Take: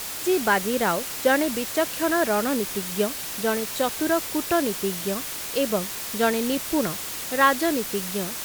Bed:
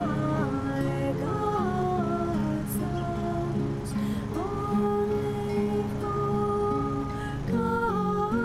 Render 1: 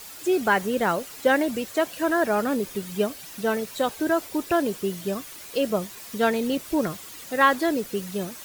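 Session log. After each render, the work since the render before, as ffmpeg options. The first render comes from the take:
-af "afftdn=nr=11:nf=-33"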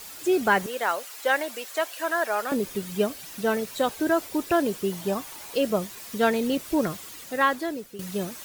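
-filter_complex "[0:a]asettb=1/sr,asplit=3[s0][s1][s2];[s0]atrim=end=0.664[s3];[s1]atrim=start=0.66:end=2.52,asetpts=PTS-STARTPTS,afade=t=in:d=0.004:c=qsin,afade=t=out:st=1.856:d=0.004:c=qsin,highpass=660[s4];[s2]atrim=start=2.516[s5];[s3][s4]acrossfade=d=0.004:c1=hsin:c2=qsin[s6];[s6][s5]acrossfade=d=0.004:c1=qsin:c2=hsin,asettb=1/sr,asplit=3[s7][s8][s9];[s7]atrim=end=4.924[s10];[s8]atrim=start=4.92:end=5.54,asetpts=PTS-STARTPTS,afade=t=in:d=0.004:c=qsin,afade=t=out:st=0.616:d=0.004:c=qsin,equalizer=f=860:w=2.5:g=10.5[s11];[s9]atrim=start=5.536[s12];[s10][s11]acrossfade=d=0.004:c1=hsin:c2=qsin[s13];[s13][s12]acrossfade=d=0.004:c1=qsin:c2=hsin,asplit=2[s14][s15];[s14]atrim=end=7.99,asetpts=PTS-STARTPTS,afade=t=out:st=7.06:d=0.93:silence=0.199526[s16];[s15]atrim=start=7.99,asetpts=PTS-STARTPTS,afade=t=in:d=0.004:c=hsin:silence=0.199526[s17];[s16][s17]concat=n=2:v=0:a=1"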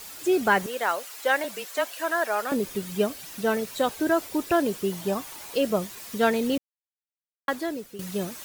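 -filter_complex "[0:a]asettb=1/sr,asplit=3[s0][s1][s2];[s0]atrim=end=1.444[s3];[s1]atrim=start=1.44:end=1.91,asetpts=PTS-STARTPTS,afade=t=in:d=0.004:c=qsin,afade=t=out:st=0.466:d=0.004:c=qsin,afreqshift=-28[s4];[s2]atrim=start=1.906[s5];[s3][s4]acrossfade=d=0.004:c1=hsin:c2=qsin[s6];[s6][s5]acrossfade=d=0.004:c1=qsin:c2=hsin,asplit=3[s7][s8][s9];[s7]atrim=end=6.58,asetpts=PTS-STARTPTS,afade=t=out:st=6.576:d=0.004:c=hsin[s10];[s8]atrim=start=6.58:end=7.48,asetpts=PTS-STARTPTS,volume=0[s11];[s9]atrim=start=7.48,asetpts=PTS-STARTPTS,afade=t=in:d=0.004:c=hsin[s12];[s10][s11][s12]concat=n=3:v=0:a=1"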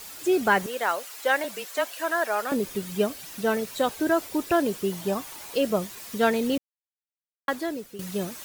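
-af anull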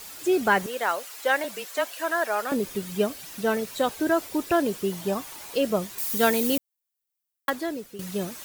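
-filter_complex "[0:a]asettb=1/sr,asplit=3[s0][s1][s2];[s0]atrim=end=5.984[s3];[s1]atrim=start=5.98:end=7.5,asetpts=PTS-STARTPTS,afade=t=in:d=0.004:c=qsin,afade=t=out:st=1.516:d=0.004:c=qsin,aemphasis=mode=production:type=50kf[s4];[s2]atrim=start=7.496[s5];[s3][s4]acrossfade=d=0.004:c1=hsin:c2=qsin[s6];[s6][s5]acrossfade=d=0.004:c1=qsin:c2=hsin"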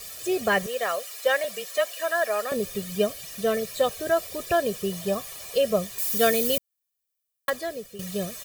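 -af "equalizer=f=1100:t=o:w=1.2:g=-5.5,aecho=1:1:1.7:0.81"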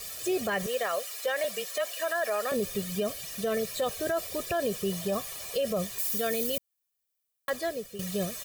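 -af "alimiter=limit=0.0944:level=0:latency=1:release=25"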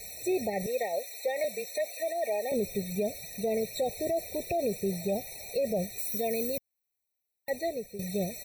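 -af "afftfilt=real='re*eq(mod(floor(b*sr/1024/910),2),0)':imag='im*eq(mod(floor(b*sr/1024/910),2),0)':win_size=1024:overlap=0.75"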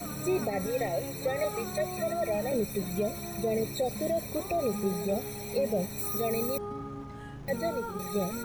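-filter_complex "[1:a]volume=0.282[s0];[0:a][s0]amix=inputs=2:normalize=0"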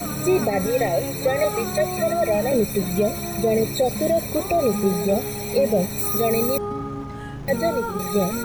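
-af "volume=2.99"

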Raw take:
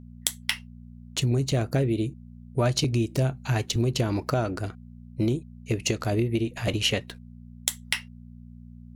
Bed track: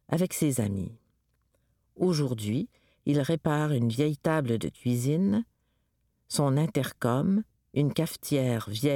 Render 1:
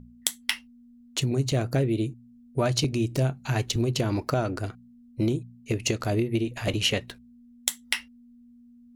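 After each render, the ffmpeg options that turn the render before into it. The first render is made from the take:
-af "bandreject=f=60:t=h:w=4,bandreject=f=120:t=h:w=4,bandreject=f=180:t=h:w=4"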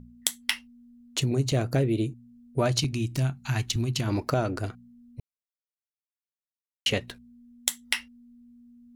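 -filter_complex "[0:a]asettb=1/sr,asplit=3[s0][s1][s2];[s0]atrim=end=2.794[s3];[s1]atrim=start=2.79:end=4.08,asetpts=PTS-STARTPTS,afade=t=in:d=0.004:c=qsin,afade=t=out:st=1.286:d=0.004:c=qsin,equalizer=f=490:t=o:w=0.95:g=-14.5[s4];[s2]atrim=start=4.076[s5];[s3][s4]acrossfade=d=0.004:c1=hsin:c2=qsin[s6];[s6][s5]acrossfade=d=0.004:c1=qsin:c2=hsin,asplit=3[s7][s8][s9];[s7]atrim=end=5.2,asetpts=PTS-STARTPTS,afade=t=out:st=5.196:d=0.004:c=hsin[s10];[s8]atrim=start=5.2:end=6.86,asetpts=PTS-STARTPTS,volume=0[s11];[s9]atrim=start=6.86,asetpts=PTS-STARTPTS,afade=t=in:d=0.004:c=hsin[s12];[s10][s11][s12]concat=n=3:v=0:a=1"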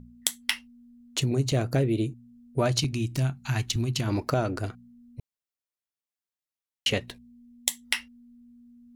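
-filter_complex "[0:a]asettb=1/sr,asplit=3[s0][s1][s2];[s0]atrim=end=7.104[s3];[s1]atrim=start=7.1:end=7.84,asetpts=PTS-STARTPTS,afade=t=in:d=0.004:c=qsin,afade=t=out:st=0.736:d=0.004:c=qsin,asuperstop=centerf=1400:order=4:qfactor=2.5[s4];[s2]atrim=start=7.836[s5];[s3][s4]acrossfade=d=0.004:c1=hsin:c2=qsin[s6];[s6][s5]acrossfade=d=0.004:c1=qsin:c2=hsin"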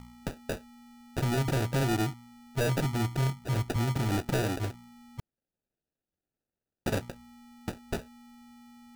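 -af "acrusher=samples=41:mix=1:aa=0.000001,asoftclip=type=hard:threshold=0.0631"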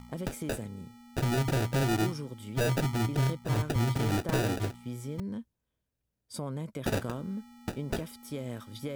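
-filter_complex "[1:a]volume=0.266[s0];[0:a][s0]amix=inputs=2:normalize=0"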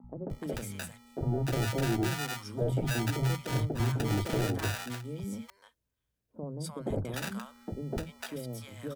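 -filter_complex "[0:a]acrossover=split=190|790[s0][s1][s2];[s0]adelay=40[s3];[s2]adelay=300[s4];[s3][s1][s4]amix=inputs=3:normalize=0"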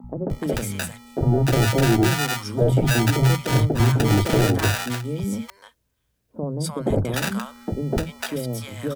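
-af "volume=3.76"

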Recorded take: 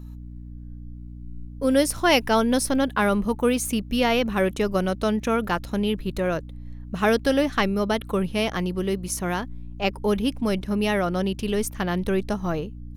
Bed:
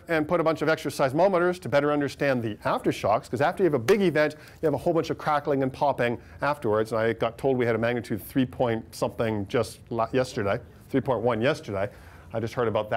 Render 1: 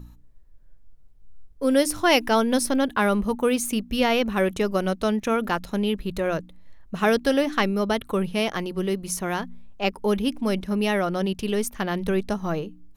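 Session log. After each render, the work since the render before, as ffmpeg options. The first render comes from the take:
-af "bandreject=f=60:t=h:w=4,bandreject=f=120:t=h:w=4,bandreject=f=180:t=h:w=4,bandreject=f=240:t=h:w=4,bandreject=f=300:t=h:w=4"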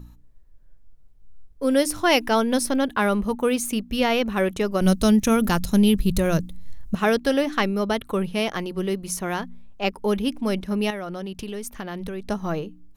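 -filter_complex "[0:a]asettb=1/sr,asplit=3[s0][s1][s2];[s0]atrim=end=4.814[s3];[s1]atrim=start=4.81:end=6.95,asetpts=PTS-STARTPTS,afade=t=in:d=0.004:c=qsin,afade=t=out:st=2.136:d=0.004:c=qsin,bass=f=250:g=13,treble=f=4000:g=14[s4];[s2]atrim=start=6.946[s5];[s3][s4]acrossfade=d=0.004:c1=hsin:c2=qsin[s6];[s6][s5]acrossfade=d=0.004:c1=qsin:c2=hsin,asettb=1/sr,asplit=3[s7][s8][s9];[s7]atrim=end=10.904[s10];[s8]atrim=start=10.9:end=12.27,asetpts=PTS-STARTPTS,afade=t=in:d=0.004:c=qsin,afade=t=out:st=1.366:d=0.004:c=qsin,acompressor=threshold=0.0398:ratio=6:attack=3.2:release=140:knee=1:detection=peak[s11];[s9]atrim=start=12.266[s12];[s10][s11]acrossfade=d=0.004:c1=hsin:c2=qsin[s13];[s13][s12]acrossfade=d=0.004:c1=qsin:c2=hsin"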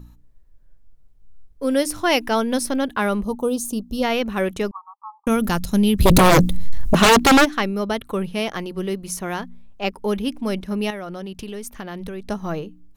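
-filter_complex "[0:a]asplit=3[s0][s1][s2];[s0]afade=t=out:st=3.22:d=0.02[s3];[s1]asuperstop=centerf=2000:order=4:qfactor=0.76,afade=t=in:st=3.22:d=0.02,afade=t=out:st=4.02:d=0.02[s4];[s2]afade=t=in:st=4.02:d=0.02[s5];[s3][s4][s5]amix=inputs=3:normalize=0,asettb=1/sr,asplit=3[s6][s7][s8];[s6]atrim=end=4.714[s9];[s7]atrim=start=4.71:end=5.27,asetpts=PTS-STARTPTS,afade=t=in:d=0.004:c=qsin,afade=t=out:st=0.556:d=0.004:c=qsin,asuperpass=centerf=1000:order=20:qfactor=2.2[s10];[s8]atrim=start=5.266[s11];[s9][s10]acrossfade=d=0.004:c1=hsin:c2=qsin[s12];[s12][s11]acrossfade=d=0.004:c1=qsin:c2=hsin,asplit=3[s13][s14][s15];[s13]afade=t=out:st=5.99:d=0.02[s16];[s14]aeval=exprs='0.376*sin(PI/2*4.47*val(0)/0.376)':c=same,afade=t=in:st=5.99:d=0.02,afade=t=out:st=7.44:d=0.02[s17];[s15]afade=t=in:st=7.44:d=0.02[s18];[s16][s17][s18]amix=inputs=3:normalize=0"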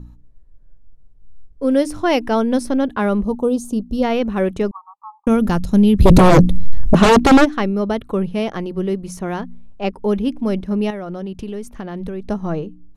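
-af "lowpass=10000,tiltshelf=f=1100:g=5.5"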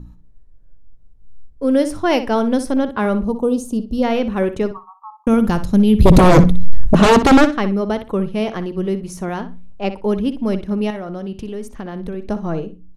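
-filter_complex "[0:a]asplit=2[s0][s1];[s1]adelay=61,lowpass=f=4900:p=1,volume=0.266,asplit=2[s2][s3];[s3]adelay=61,lowpass=f=4900:p=1,volume=0.22,asplit=2[s4][s5];[s5]adelay=61,lowpass=f=4900:p=1,volume=0.22[s6];[s0][s2][s4][s6]amix=inputs=4:normalize=0"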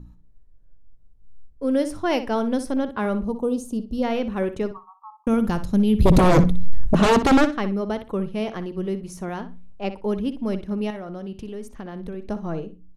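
-af "volume=0.501"

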